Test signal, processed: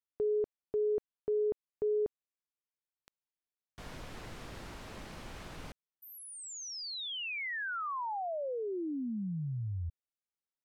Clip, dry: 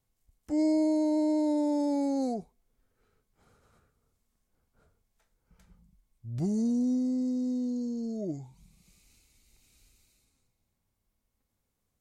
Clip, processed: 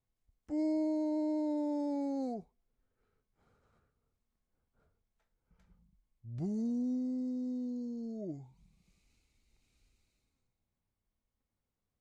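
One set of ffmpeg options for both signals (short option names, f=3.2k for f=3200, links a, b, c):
-af "aemphasis=mode=reproduction:type=50fm,volume=-7dB"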